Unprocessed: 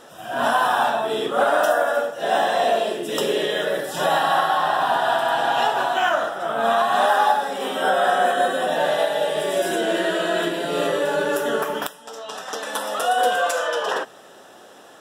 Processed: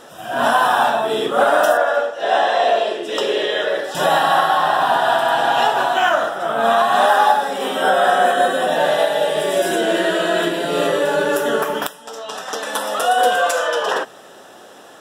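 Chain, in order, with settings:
0:01.77–0:03.95: three-way crossover with the lows and the highs turned down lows −15 dB, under 310 Hz, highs −16 dB, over 6,500 Hz
level +4 dB

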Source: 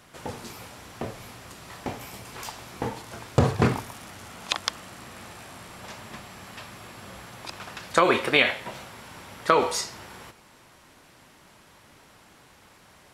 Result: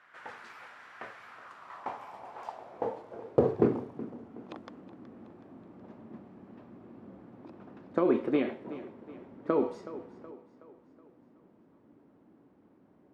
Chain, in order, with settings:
feedback echo with a high-pass in the loop 372 ms, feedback 52%, high-pass 210 Hz, level −13.5 dB
band-pass filter sweep 1,600 Hz → 280 Hz, 0:01.16–0:04.03
one half of a high-frequency compander decoder only
level +3.5 dB

